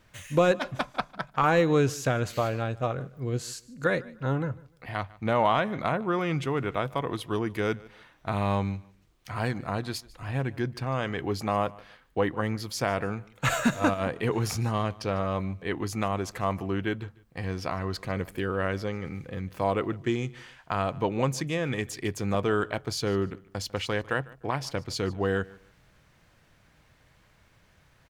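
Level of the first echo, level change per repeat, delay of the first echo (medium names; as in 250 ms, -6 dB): -22.0 dB, -12.0 dB, 149 ms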